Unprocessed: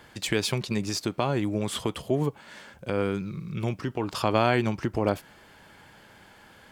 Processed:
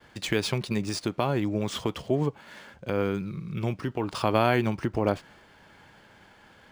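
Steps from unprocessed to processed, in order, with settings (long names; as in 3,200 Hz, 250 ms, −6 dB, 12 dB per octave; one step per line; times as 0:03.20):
downward expander −50 dBFS
linearly interpolated sample-rate reduction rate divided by 3×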